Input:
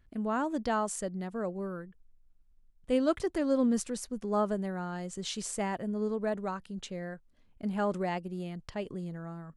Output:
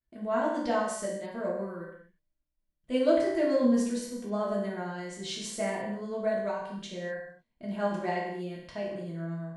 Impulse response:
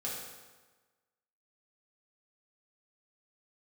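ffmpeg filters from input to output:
-filter_complex "[0:a]agate=range=0.0224:threshold=0.00224:ratio=3:detection=peak,tremolo=f=8.8:d=0.33,equalizer=f=500:t=o:w=1:g=5,equalizer=f=2000:t=o:w=1:g=4,equalizer=f=4000:t=o:w=1:g=5[s0];[1:a]atrim=start_sample=2205,afade=t=out:st=0.39:d=0.01,atrim=end_sample=17640,asetrate=57330,aresample=44100[s1];[s0][s1]afir=irnorm=-1:irlink=0"

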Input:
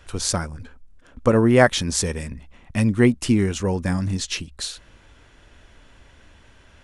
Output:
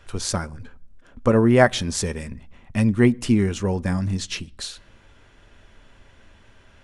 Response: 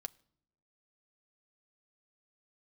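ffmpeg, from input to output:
-filter_complex "[0:a]asplit=2[s0][s1];[1:a]atrim=start_sample=2205,highshelf=f=5600:g=-8[s2];[s1][s2]afir=irnorm=-1:irlink=0,volume=2.37[s3];[s0][s3]amix=inputs=2:normalize=0,volume=0.355"

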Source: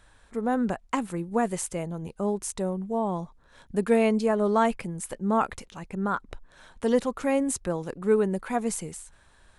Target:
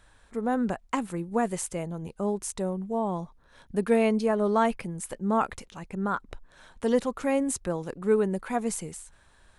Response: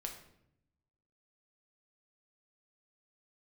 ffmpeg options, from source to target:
-filter_complex "[0:a]asettb=1/sr,asplit=3[s0][s1][s2];[s0]atrim=end=3.234[s3];[s1]atrim=start=3.23:end=4.91,asetpts=PTS-STARTPTS,afade=t=in:d=0.004:c=qsin,afade=t=out:st=1.676:d=0.004:c=qsin,bandreject=f=7400:w=7.5[s4];[s2]atrim=start=4.906[s5];[s3][s4]acrossfade=d=0.004:c1=hsin:c2=qsin[s6];[s6][s5]acrossfade=d=0.004:c1=qsin:c2=hsin,volume=0.891"

